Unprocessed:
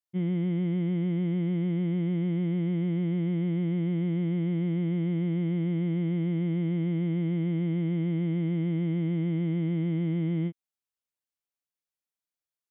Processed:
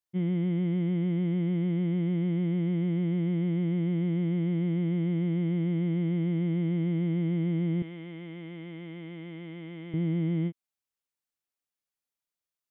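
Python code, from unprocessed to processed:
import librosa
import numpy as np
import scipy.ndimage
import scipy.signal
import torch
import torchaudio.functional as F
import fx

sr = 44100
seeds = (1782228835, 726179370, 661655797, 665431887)

y = fx.highpass(x, sr, hz=980.0, slope=6, at=(7.82, 9.94))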